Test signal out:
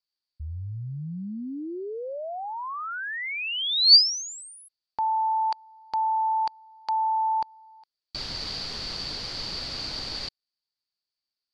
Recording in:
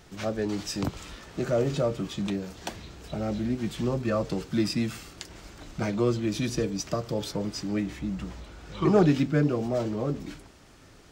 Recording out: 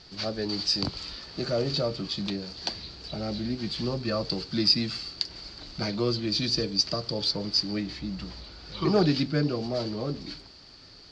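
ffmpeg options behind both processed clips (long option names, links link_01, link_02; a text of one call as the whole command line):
ffmpeg -i in.wav -af "lowpass=frequency=4600:width_type=q:width=15,volume=-2.5dB" out.wav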